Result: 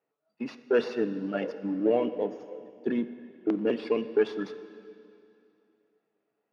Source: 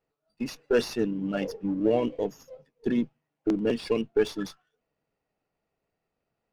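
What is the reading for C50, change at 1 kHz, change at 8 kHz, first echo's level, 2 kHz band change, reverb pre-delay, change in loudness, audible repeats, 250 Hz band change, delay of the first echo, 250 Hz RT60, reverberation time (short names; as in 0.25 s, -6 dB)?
12.5 dB, 0.0 dB, under -15 dB, none, -0.5 dB, 4 ms, -1.0 dB, none, -2.0 dB, none, 2.8 s, 2.7 s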